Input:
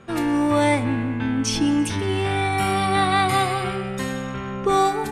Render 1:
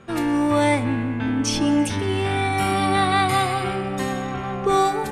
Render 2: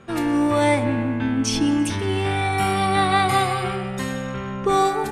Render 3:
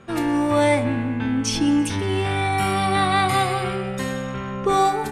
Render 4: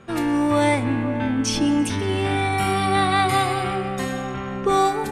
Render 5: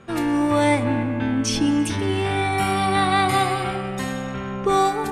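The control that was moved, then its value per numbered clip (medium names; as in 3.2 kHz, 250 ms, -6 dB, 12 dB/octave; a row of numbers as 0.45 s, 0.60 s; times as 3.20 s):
band-passed feedback delay, time: 1098 ms, 155 ms, 63 ms, 525 ms, 283 ms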